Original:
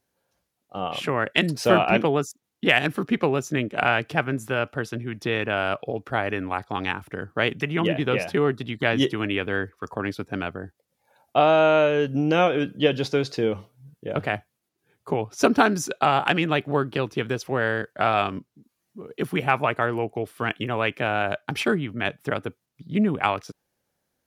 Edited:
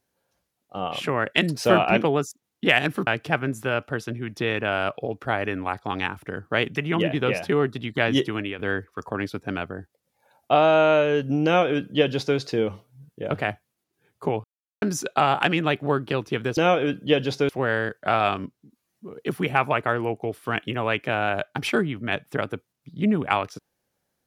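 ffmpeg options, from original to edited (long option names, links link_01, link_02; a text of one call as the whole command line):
ffmpeg -i in.wav -filter_complex "[0:a]asplit=7[link_01][link_02][link_03][link_04][link_05][link_06][link_07];[link_01]atrim=end=3.072[link_08];[link_02]atrim=start=3.918:end=9.44,asetpts=PTS-STARTPTS,afade=type=out:start_time=5.132:duration=0.39:curve=qsin:silence=0.266073[link_09];[link_03]atrim=start=9.44:end=15.29,asetpts=PTS-STARTPTS,afade=type=in:duration=0.004:curve=hsin:silence=0.266073,afade=type=out:start_time=5.846:duration=0.004:curve=hsin[link_10];[link_04]atrim=start=15.29:end=15.67,asetpts=PTS-STARTPTS,volume=0[link_11];[link_05]atrim=start=15.67:end=17.422,asetpts=PTS-STARTPTS,afade=type=in:duration=0.004:curve=hsin[link_12];[link_06]atrim=start=12.298:end=13.222[link_13];[link_07]atrim=start=17.418[link_14];[link_09][link_10][link_11][link_12]concat=n=4:v=0:a=1[link_15];[link_08][link_15]acrossfade=duration=0.004:curve1=hsin:curve2=hsin[link_16];[link_16][link_13]acrossfade=duration=0.004:curve1=hsin:curve2=hsin[link_17];[link_17][link_14]acrossfade=duration=0.004:curve1=hsin:curve2=hsin" out.wav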